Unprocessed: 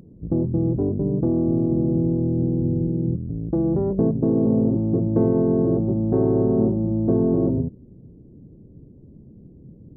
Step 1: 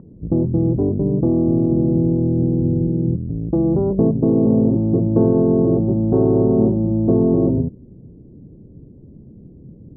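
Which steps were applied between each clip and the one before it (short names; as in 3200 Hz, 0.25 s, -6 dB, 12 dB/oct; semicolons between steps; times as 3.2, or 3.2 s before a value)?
LPF 1300 Hz 24 dB/oct; gain +4 dB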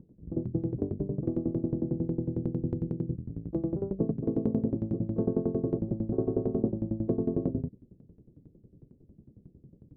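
dynamic EQ 900 Hz, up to -7 dB, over -42 dBFS, Q 2.9; dB-ramp tremolo decaying 11 Hz, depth 19 dB; gain -7.5 dB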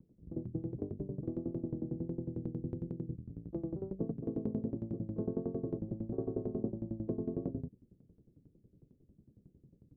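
vibrato 1.5 Hz 36 cents; gain -8 dB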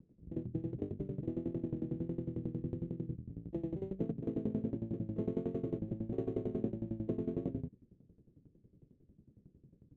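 median filter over 25 samples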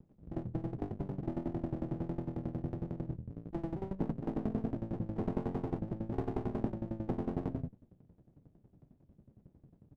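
downsampling 8000 Hz; running maximum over 33 samples; gain +2 dB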